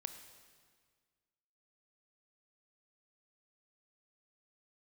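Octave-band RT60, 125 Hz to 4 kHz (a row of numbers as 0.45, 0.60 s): 1.9, 1.9, 1.7, 1.7, 1.7, 1.6 s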